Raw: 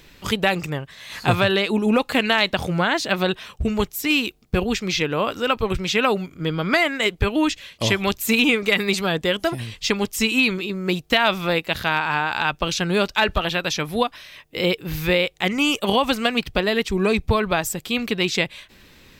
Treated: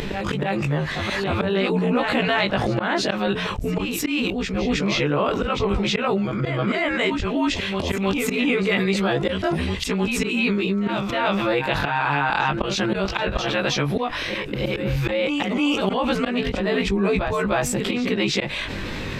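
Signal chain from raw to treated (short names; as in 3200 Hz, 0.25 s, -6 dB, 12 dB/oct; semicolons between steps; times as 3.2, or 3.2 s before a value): short-time reversal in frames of 41 ms; auto swell 0.221 s; Bessel low-pass 9700 Hz, order 4; high shelf 3400 Hz -12 dB; reverse echo 0.314 s -13 dB; fast leveller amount 70%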